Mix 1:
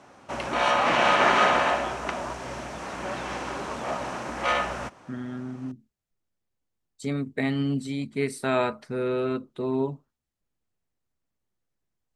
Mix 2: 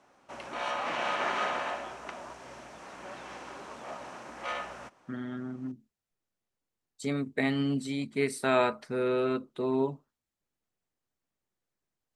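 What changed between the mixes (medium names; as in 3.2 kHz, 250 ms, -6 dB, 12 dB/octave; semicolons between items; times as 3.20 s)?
background -10.5 dB; master: add bass shelf 160 Hz -9 dB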